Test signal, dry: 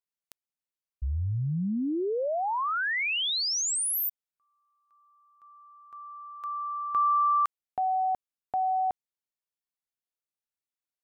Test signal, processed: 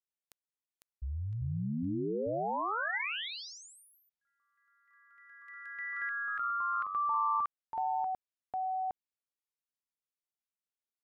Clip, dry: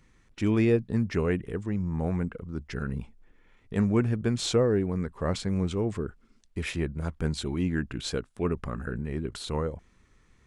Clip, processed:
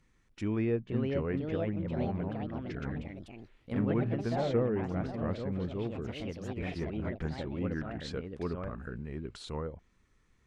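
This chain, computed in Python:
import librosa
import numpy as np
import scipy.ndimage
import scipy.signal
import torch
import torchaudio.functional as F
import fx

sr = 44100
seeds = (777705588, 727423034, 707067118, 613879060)

y = fx.echo_pitch(x, sr, ms=552, semitones=3, count=3, db_per_echo=-3.0)
y = fx.env_lowpass_down(y, sr, base_hz=2500.0, full_db=-24.0)
y = y * librosa.db_to_amplitude(-7.5)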